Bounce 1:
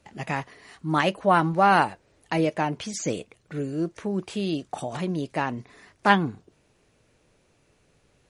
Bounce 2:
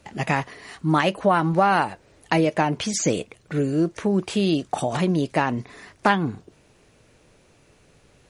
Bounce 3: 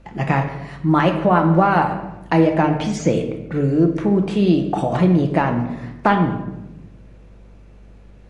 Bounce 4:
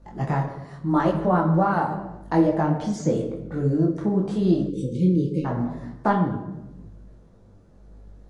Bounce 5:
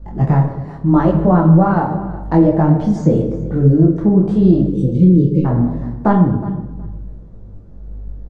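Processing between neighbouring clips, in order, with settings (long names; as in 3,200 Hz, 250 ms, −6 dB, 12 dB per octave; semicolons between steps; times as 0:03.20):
downward compressor 5 to 1, threshold −23 dBFS, peak gain reduction 10.5 dB; level +7.5 dB
low-pass filter 1,500 Hz 6 dB per octave; mains hum 50 Hz, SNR 28 dB; convolution reverb RT60 0.95 s, pre-delay 6 ms, DRR 4 dB; level +3.5 dB
time-frequency box erased 0:04.69–0:05.45, 550–2,100 Hz; parametric band 2,500 Hz −14.5 dB 0.75 octaves; micro pitch shift up and down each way 30 cents; level −1 dB
spectral tilt −3 dB per octave; repeating echo 368 ms, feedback 17%, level −18 dB; boost into a limiter +5 dB; level −1 dB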